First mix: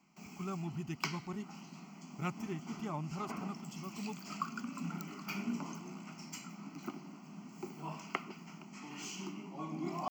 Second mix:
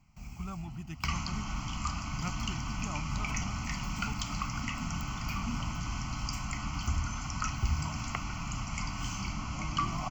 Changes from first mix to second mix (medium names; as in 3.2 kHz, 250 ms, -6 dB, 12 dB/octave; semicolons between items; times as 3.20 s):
first sound: remove steep high-pass 160 Hz 72 dB/octave; second sound: unmuted; master: add peaking EQ 380 Hz -11.5 dB 0.56 oct